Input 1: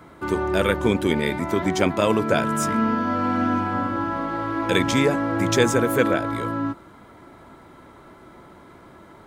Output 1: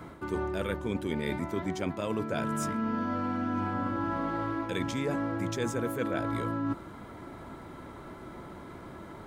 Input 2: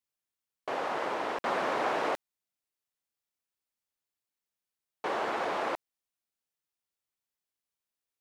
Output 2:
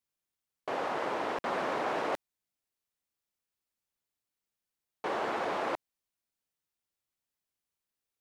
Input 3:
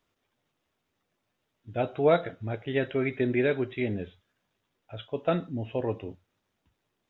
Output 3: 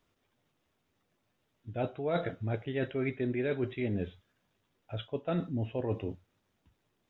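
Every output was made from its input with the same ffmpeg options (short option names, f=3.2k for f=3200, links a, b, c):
-af "lowshelf=f=320:g=4.5,areverse,acompressor=threshold=-28dB:ratio=10,areverse"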